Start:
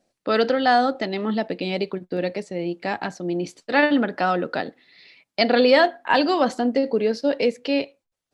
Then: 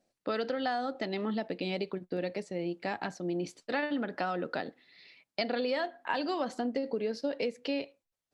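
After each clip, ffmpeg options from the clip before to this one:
-af "acompressor=threshold=-22dB:ratio=6,volume=-6.5dB"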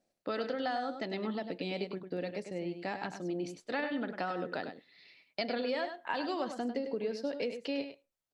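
-af "aecho=1:1:100:0.376,volume=-3dB"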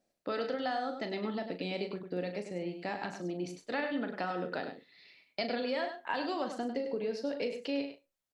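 -filter_complex "[0:a]asplit=2[a][b];[b]adelay=39,volume=-9.5dB[c];[a][c]amix=inputs=2:normalize=0"

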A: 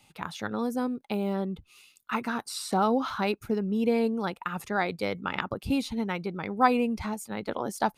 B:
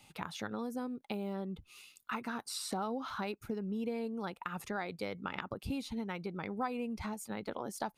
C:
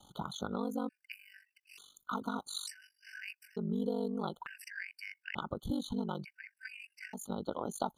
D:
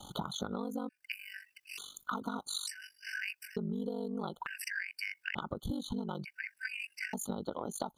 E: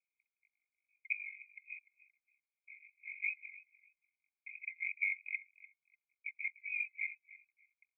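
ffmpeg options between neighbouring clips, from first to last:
-af "acompressor=threshold=-38dB:ratio=3"
-af "aeval=exprs='val(0)*sin(2*PI*24*n/s)':c=same,afftfilt=real='re*gt(sin(2*PI*0.56*pts/sr)*(1-2*mod(floor(b*sr/1024/1500),2)),0)':imag='im*gt(sin(2*PI*0.56*pts/sr)*(1-2*mod(floor(b*sr/1024/1500),2)),0)':win_size=1024:overlap=0.75,volume=5.5dB"
-af "acompressor=threshold=-45dB:ratio=6,volume=10.5dB"
-af "asuperpass=centerf=2300:order=20:qfactor=5.3,aecho=1:1:296|592:0.119|0.0261,volume=6.5dB"

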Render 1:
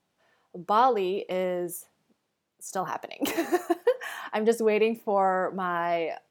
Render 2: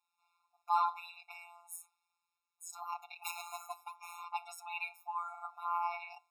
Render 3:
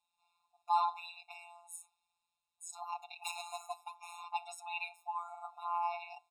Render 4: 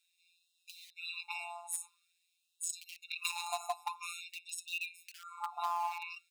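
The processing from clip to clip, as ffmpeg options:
-af "bandreject=f=126.8:t=h:w=4,bandreject=f=253.6:t=h:w=4,bandreject=f=380.4:t=h:w=4,bandreject=f=507.2:t=h:w=4,bandreject=f=634:t=h:w=4,bandreject=f=760.8:t=h:w=4,bandreject=f=887.6:t=h:w=4,bandreject=f=1.0144k:t=h:w=4,bandreject=f=1.1412k:t=h:w=4,bandreject=f=1.268k:t=h:w=4,bandreject=f=1.3948k:t=h:w=4,bandreject=f=1.5216k:t=h:w=4,bandreject=f=1.6484k:t=h:w=4,bandreject=f=1.7752k:t=h:w=4,bandreject=f=1.902k:t=h:w=4,bandreject=f=2.0288k:t=h:w=4,bandreject=f=2.1556k:t=h:w=4,bandreject=f=2.2824k:t=h:w=4,afftfilt=real='hypot(re,im)*cos(PI*b)':imag='0':win_size=1024:overlap=0.75,afftfilt=real='re*eq(mod(floor(b*sr/1024/710),2),1)':imag='im*eq(mod(floor(b*sr/1024/710),2),1)':win_size=1024:overlap=0.75,volume=-2dB"
-af "firequalizer=gain_entry='entry(210,0);entry(400,-27);entry(630,1);entry(1100,-7);entry(1700,-23);entry(2600,-3);entry(3800,0);entry(5500,-8);entry(8600,-1);entry(13000,-16)':delay=0.05:min_phase=1,volume=4.5dB"
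-filter_complex "[0:a]asplit=2[a][b];[b]acrusher=bits=5:mix=0:aa=0.000001,volume=-11.5dB[c];[a][c]amix=inputs=2:normalize=0,acompressor=threshold=-42dB:ratio=12,afftfilt=real='re*gte(b*sr/1024,640*pow(2600/640,0.5+0.5*sin(2*PI*0.48*pts/sr)))':imag='im*gte(b*sr/1024,640*pow(2600/640,0.5+0.5*sin(2*PI*0.48*pts/sr)))':win_size=1024:overlap=0.75,volume=10.5dB"

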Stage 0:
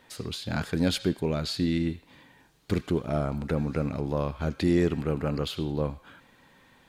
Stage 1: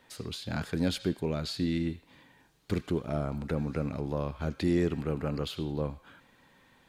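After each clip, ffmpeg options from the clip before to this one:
-filter_complex "[0:a]acrossover=split=440[a][b];[b]acompressor=threshold=-29dB:ratio=2.5[c];[a][c]amix=inputs=2:normalize=0,volume=-3.5dB"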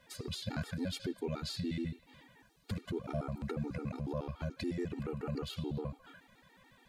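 -af "alimiter=level_in=2.5dB:limit=-24dB:level=0:latency=1:release=193,volume=-2.5dB,afftfilt=real='re*gt(sin(2*PI*7*pts/sr)*(1-2*mod(floor(b*sr/1024/240),2)),0)':imag='im*gt(sin(2*PI*7*pts/sr)*(1-2*mod(floor(b*sr/1024/240),2)),0)':win_size=1024:overlap=0.75,volume=2dB"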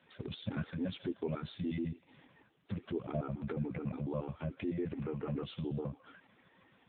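-af "volume=1.5dB" -ar 8000 -c:a libopencore_amrnb -b:a 6700

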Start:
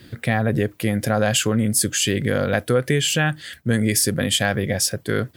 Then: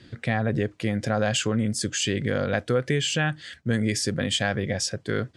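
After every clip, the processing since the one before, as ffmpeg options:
-af "lowpass=f=7.5k:w=0.5412,lowpass=f=7.5k:w=1.3066,volume=-4.5dB"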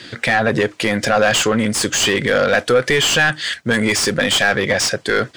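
-filter_complex "[0:a]crystalizer=i=4:c=0,asplit=2[a][b];[b]highpass=f=720:p=1,volume=24dB,asoftclip=type=tanh:threshold=-2.5dB[c];[a][c]amix=inputs=2:normalize=0,lowpass=f=2k:p=1,volume=-6dB"

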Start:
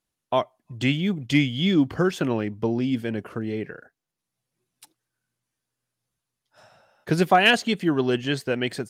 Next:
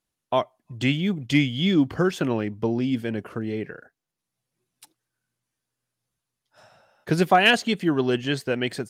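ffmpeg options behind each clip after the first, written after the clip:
-af anull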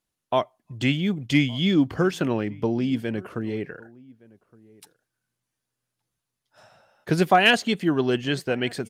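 -filter_complex "[0:a]asplit=2[a][b];[b]adelay=1166,volume=-24dB,highshelf=f=4k:g=-26.2[c];[a][c]amix=inputs=2:normalize=0"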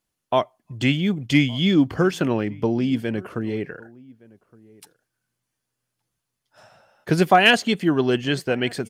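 -af "bandreject=f=3.8k:w=25,volume=2.5dB"

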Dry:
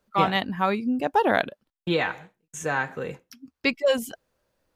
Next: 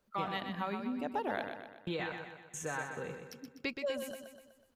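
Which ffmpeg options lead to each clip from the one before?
-filter_complex "[0:a]acompressor=threshold=-38dB:ratio=2,asplit=2[a][b];[b]aecho=0:1:124|248|372|496|620|744:0.447|0.228|0.116|0.0593|0.0302|0.0154[c];[a][c]amix=inputs=2:normalize=0,volume=-4dB"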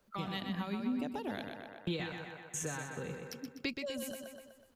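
-filter_complex "[0:a]acrossover=split=300|3000[a][b][c];[b]acompressor=threshold=-48dB:ratio=4[d];[a][d][c]amix=inputs=3:normalize=0,volume=4.5dB"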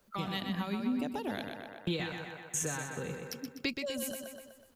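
-af "highshelf=f=6.2k:g=5.5,volume=2.5dB"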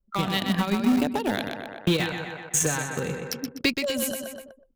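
-filter_complex "[0:a]asplit=2[a][b];[b]acrusher=bits=4:mix=0:aa=0.000001,volume=-12dB[c];[a][c]amix=inputs=2:normalize=0,anlmdn=0.00158,volume=9dB"

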